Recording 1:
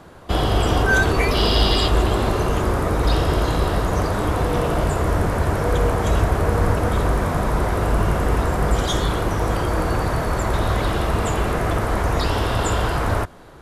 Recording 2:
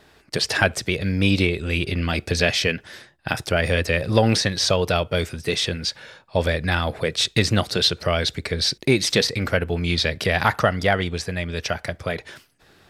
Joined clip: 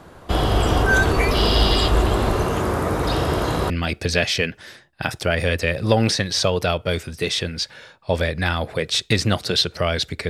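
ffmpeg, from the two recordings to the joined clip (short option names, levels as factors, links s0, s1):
-filter_complex "[0:a]asettb=1/sr,asplit=3[s0][s1][s2];[s0]atrim=end=2.444[s3];[s1]atrim=start=2.44:end=3.7,asetpts=PTS-STARTPTS,afade=t=in:d=0.004:c=qsin,afade=t=out:st=1.256:d=0.004:c=qsin,highpass=84[s4];[s2]atrim=start=3.696[s5];[s3][s4]acrossfade=d=0.004:c1=hsin:c2=qsin[s6];[s6][s5]acrossfade=d=0.004:c1=qsin:c2=hsin,apad=whole_dur=10.29,atrim=end=10.29,atrim=end=3.702[s7];[1:a]atrim=start=1.958:end=8.55[s8];[s7][s8]acrossfade=d=0.004:c1=hsin:c2=hsin"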